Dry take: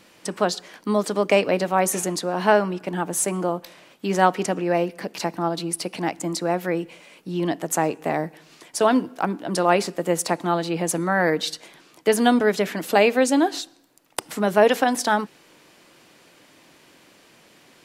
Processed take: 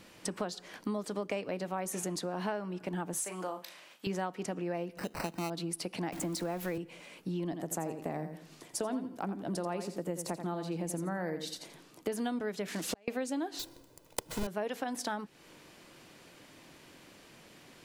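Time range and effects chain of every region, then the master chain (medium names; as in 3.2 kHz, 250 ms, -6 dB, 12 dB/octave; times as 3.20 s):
3.20–4.07 s: high-pass 1.1 kHz 6 dB/octave + doubling 38 ms -8.5 dB
4.97–5.50 s: upward compressor, threshold -37 dBFS + sample-rate reducer 3.4 kHz
6.12–6.78 s: jump at every zero crossing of -34.5 dBFS + treble shelf 10 kHz +7.5 dB + three bands compressed up and down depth 40%
7.44–12.12 s: peaking EQ 2.3 kHz -6 dB 2.9 oct + feedback delay 85 ms, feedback 21%, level -9.5 dB
12.68–13.08 s: zero-crossing glitches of -18 dBFS + low-pass 6.9 kHz + inverted gate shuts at -12 dBFS, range -37 dB
13.59–14.47 s: square wave that keeps the level + peaking EQ 1.7 kHz -6 dB 1.4 oct + comb 2 ms, depth 49%
whole clip: bass shelf 140 Hz +9.5 dB; compression 5:1, threshold -30 dBFS; trim -3.5 dB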